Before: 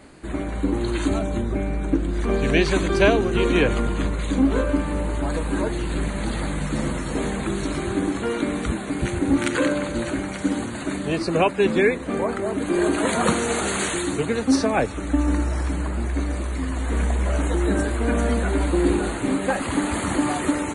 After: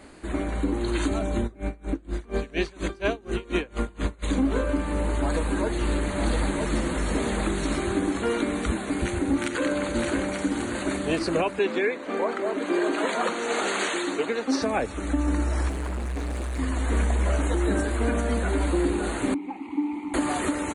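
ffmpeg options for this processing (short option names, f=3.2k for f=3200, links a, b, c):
-filter_complex "[0:a]asplit=3[a][b][c];[a]afade=t=out:st=1.46:d=0.02[d];[b]aeval=exprs='val(0)*pow(10,-27*(0.5-0.5*cos(2*PI*4.2*n/s))/20)':c=same,afade=t=in:st=1.46:d=0.02,afade=t=out:st=4.22:d=0.02[e];[c]afade=t=in:st=4.22:d=0.02[f];[d][e][f]amix=inputs=3:normalize=0,asettb=1/sr,asplit=3[g][h][i];[g]atrim=end=4.854[j];[h]atrim=start=4.85:end=7.75,asetpts=PTS-STARTPTS,afade=t=in:d=0.004:c=qsin,afade=t=out:st=2.896:d=0.004:c=qsin,aecho=1:1:964:0.631,atrim=end_sample=127890[k];[i]atrim=start=7.746[l];[j][k]acrossfade=d=0.004:c1=hsin:c2=qsin[m];[m][l]acrossfade=d=0.004:c1=qsin:c2=hsin,asplit=2[n][o];[o]afade=t=in:st=9.37:d=0.01,afade=t=out:st=10.41:d=0.01,aecho=0:1:570|1140|1710|2280|2850|3420|3990|4560|5130|5700|6270|6840:0.281838|0.211379|0.158534|0.118901|0.0891754|0.0668815|0.0501612|0.0376209|0.0282157|0.0211617|0.0158713|0.0119035[p];[n][p]amix=inputs=2:normalize=0,asettb=1/sr,asplit=3[q][r][s];[q]atrim=end=11.594[t];[r]atrim=start=11.59:end=14.62,asetpts=PTS-STARTPTS,afade=t=in:d=0.004:c=qsin,afade=t=out:st=3.026:d=0.004:c=qsin,highpass=310,lowpass=5.7k[u];[s]atrim=start=14.616[v];[t][u]acrossfade=d=0.004:c1=hsin:c2=qsin[w];[w][v]acrossfade=d=0.004:c1=qsin:c2=hsin,asettb=1/sr,asplit=3[x][y][z];[x]atrim=end=15.694[aa];[y]atrim=start=15.69:end=16.59,asetpts=PTS-STARTPTS,afade=t=in:d=0.004:c=qsin,afade=t=out:st=0.896:d=0.004:c=qsin,asoftclip=type=hard:threshold=-26.5dB[ab];[z]atrim=start=16.586[ac];[aa][ab]acrossfade=d=0.004:c1=hsin:c2=qsin[ad];[ad][ac]acrossfade=d=0.004:c1=qsin:c2=hsin,asettb=1/sr,asplit=3[ae][af][ag];[ae]atrim=end=19.344[ah];[af]atrim=start=19.34:end=20.14,asetpts=PTS-STARTPTS,afade=t=in:d=0.004:c=qsin,afade=t=out:st=0.796:d=0.004:c=qsin,asplit=3[ai][aj][ak];[ai]bandpass=f=300:t=q:w=8,volume=0dB[al];[aj]bandpass=f=870:t=q:w=8,volume=-6dB[am];[ak]bandpass=f=2.24k:t=q:w=8,volume=-9dB[an];[al][am][an]amix=inputs=3:normalize=0[ao];[ag]atrim=start=20.136[ap];[ah][ao]acrossfade=d=0.004:c1=hsin:c2=qsin[aq];[aq][ap]acrossfade=d=0.004:c1=qsin:c2=hsin,equalizer=f=140:w=2.4:g=-8.5,alimiter=limit=-14.5dB:level=0:latency=1:release=313"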